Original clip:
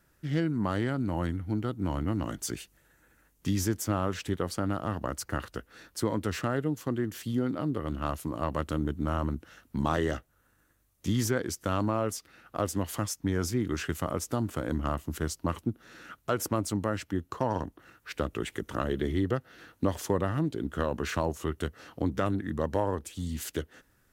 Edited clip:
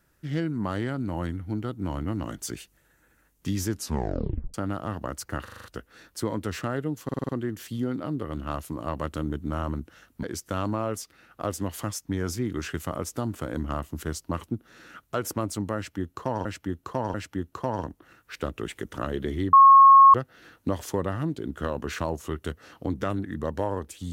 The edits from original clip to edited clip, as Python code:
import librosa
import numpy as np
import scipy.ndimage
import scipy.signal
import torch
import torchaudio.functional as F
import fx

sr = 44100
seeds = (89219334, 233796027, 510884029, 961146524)

y = fx.edit(x, sr, fx.tape_stop(start_s=3.7, length_s=0.84),
    fx.stutter(start_s=5.44, slice_s=0.04, count=6),
    fx.stutter(start_s=6.84, slice_s=0.05, count=6),
    fx.cut(start_s=9.78, length_s=1.6),
    fx.repeat(start_s=16.91, length_s=0.69, count=3),
    fx.insert_tone(at_s=19.3, length_s=0.61, hz=1090.0, db=-9.0), tone=tone)